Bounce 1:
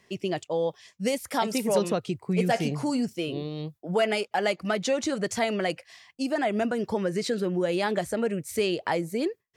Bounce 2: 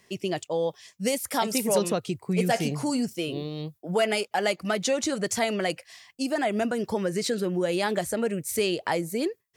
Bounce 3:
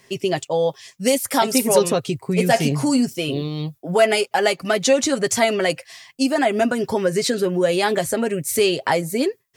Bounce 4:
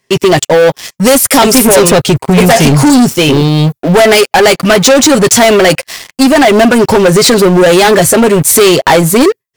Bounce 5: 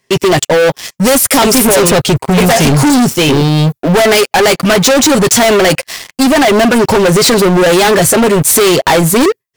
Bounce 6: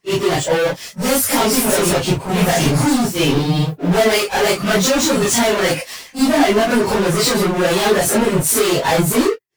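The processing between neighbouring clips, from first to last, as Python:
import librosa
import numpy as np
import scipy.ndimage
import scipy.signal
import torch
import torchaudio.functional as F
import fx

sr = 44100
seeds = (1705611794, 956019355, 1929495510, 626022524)

y1 = fx.high_shelf(x, sr, hz=6700.0, db=10.0)
y2 = y1 + 0.48 * np.pad(y1, (int(7.5 * sr / 1000.0), 0))[:len(y1)]
y2 = y2 * librosa.db_to_amplitude(6.5)
y3 = fx.leveller(y2, sr, passes=5)
y3 = y3 * librosa.db_to_amplitude(2.0)
y4 = np.clip(10.0 ** (6.5 / 20.0) * y3, -1.0, 1.0) / 10.0 ** (6.5 / 20.0)
y5 = fx.phase_scramble(y4, sr, seeds[0], window_ms=100)
y5 = y5 * librosa.db_to_amplitude(-7.0)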